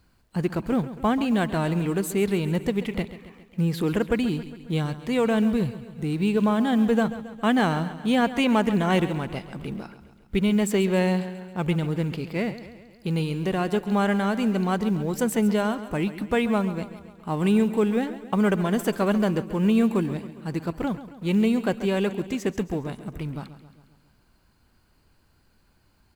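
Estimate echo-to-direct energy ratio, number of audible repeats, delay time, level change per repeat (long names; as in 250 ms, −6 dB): −12.5 dB, 5, 136 ms, −5.0 dB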